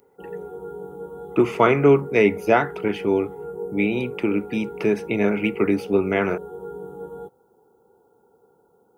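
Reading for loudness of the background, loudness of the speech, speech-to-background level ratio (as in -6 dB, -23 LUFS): -35.5 LUFS, -21.5 LUFS, 14.0 dB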